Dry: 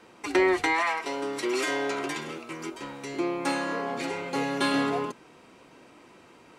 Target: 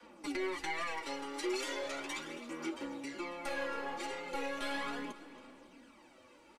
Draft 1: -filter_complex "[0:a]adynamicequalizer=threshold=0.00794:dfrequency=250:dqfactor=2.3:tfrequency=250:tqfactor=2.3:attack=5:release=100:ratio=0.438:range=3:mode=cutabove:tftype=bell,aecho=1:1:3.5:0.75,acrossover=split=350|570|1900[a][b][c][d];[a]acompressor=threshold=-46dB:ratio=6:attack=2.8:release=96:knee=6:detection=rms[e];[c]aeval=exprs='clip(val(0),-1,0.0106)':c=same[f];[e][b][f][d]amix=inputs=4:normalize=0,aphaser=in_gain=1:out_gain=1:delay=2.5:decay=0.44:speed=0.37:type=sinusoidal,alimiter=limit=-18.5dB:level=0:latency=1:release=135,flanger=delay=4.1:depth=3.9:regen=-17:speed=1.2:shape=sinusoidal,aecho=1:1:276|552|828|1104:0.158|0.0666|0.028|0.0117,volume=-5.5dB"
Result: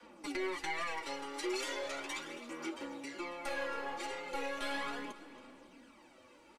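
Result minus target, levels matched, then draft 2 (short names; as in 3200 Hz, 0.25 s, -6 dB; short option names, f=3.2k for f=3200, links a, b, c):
compressor: peak gain reduction +6.5 dB
-filter_complex "[0:a]adynamicequalizer=threshold=0.00794:dfrequency=250:dqfactor=2.3:tfrequency=250:tqfactor=2.3:attack=5:release=100:ratio=0.438:range=3:mode=cutabove:tftype=bell,aecho=1:1:3.5:0.75,acrossover=split=350|570|1900[a][b][c][d];[a]acompressor=threshold=-38dB:ratio=6:attack=2.8:release=96:knee=6:detection=rms[e];[c]aeval=exprs='clip(val(0),-1,0.0106)':c=same[f];[e][b][f][d]amix=inputs=4:normalize=0,aphaser=in_gain=1:out_gain=1:delay=2.5:decay=0.44:speed=0.37:type=sinusoidal,alimiter=limit=-18.5dB:level=0:latency=1:release=135,flanger=delay=4.1:depth=3.9:regen=-17:speed=1.2:shape=sinusoidal,aecho=1:1:276|552|828|1104:0.158|0.0666|0.028|0.0117,volume=-5.5dB"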